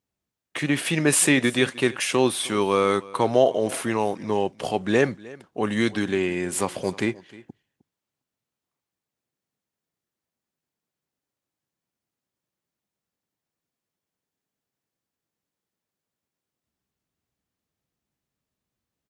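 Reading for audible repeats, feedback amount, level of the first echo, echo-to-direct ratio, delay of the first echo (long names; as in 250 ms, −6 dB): 1, repeats not evenly spaced, −21.0 dB, −21.0 dB, 309 ms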